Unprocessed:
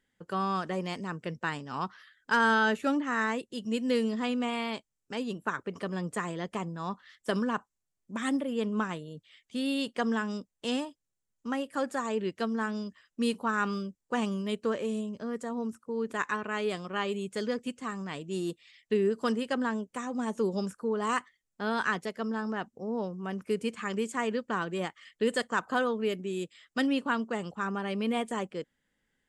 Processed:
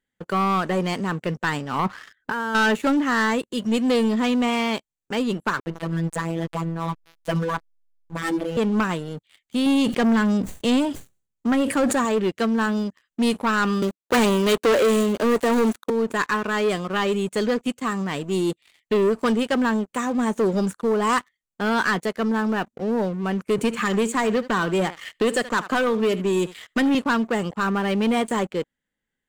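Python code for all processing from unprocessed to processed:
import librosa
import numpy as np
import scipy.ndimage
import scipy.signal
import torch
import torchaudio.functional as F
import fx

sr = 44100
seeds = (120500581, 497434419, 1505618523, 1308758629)

y = fx.chain(x, sr, fx.lowpass(hz=1700.0, slope=6),
    fx.over_compress(threshold_db=-35.0, ratio=-1.0), at=(1.79, 2.55))
y = fx.chain(y, sr, fx.robotise(hz=165.0),
    fx.backlash(play_db=-42.0), at=(5.6, 8.57))
y = fx.chain(y, sr, fx.low_shelf(hz=370.0, db=7.5),
    fx.sustainer(db_per_s=100.0), at=(9.66, 12.05))
y = fx.chain(y, sr, fx.dead_time(dead_ms=0.084),
    fx.highpass(hz=250.0, slope=24),
    fx.leveller(passes=3), at=(13.82, 15.9))
y = fx.chain(y, sr, fx.echo_single(ms=75, db=-19.5),
    fx.band_squash(depth_pct=70), at=(23.58, 26.95))
y = fx.notch(y, sr, hz=5200.0, q=5.4)
y = fx.leveller(y, sr, passes=3)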